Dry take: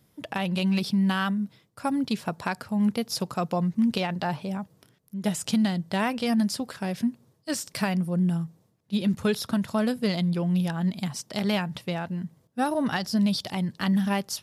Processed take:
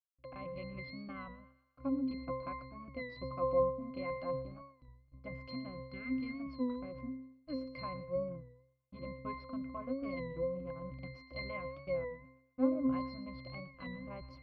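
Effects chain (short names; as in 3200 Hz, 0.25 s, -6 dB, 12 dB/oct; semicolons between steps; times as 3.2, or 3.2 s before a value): treble ducked by the level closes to 2500 Hz, closed at -20 dBFS; spectral delete 5.75–6.38, 480–1200 Hz; RIAA curve recording; backlash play -30 dBFS; air absorption 360 m; octave resonator C, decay 0.69 s; thinning echo 0.12 s, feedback 51%, high-pass 520 Hz, level -16.5 dB; record warp 33 1/3 rpm, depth 100 cents; gain +16 dB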